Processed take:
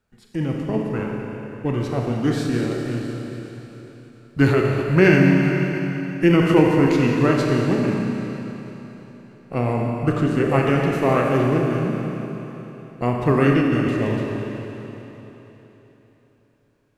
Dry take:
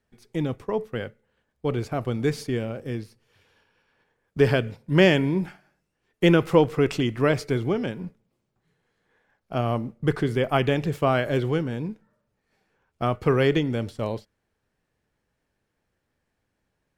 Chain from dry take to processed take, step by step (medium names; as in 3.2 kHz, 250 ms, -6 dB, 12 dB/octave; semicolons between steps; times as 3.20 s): Schroeder reverb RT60 3.7 s, combs from 29 ms, DRR -0.5 dB; formant shift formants -3 st; trim +2 dB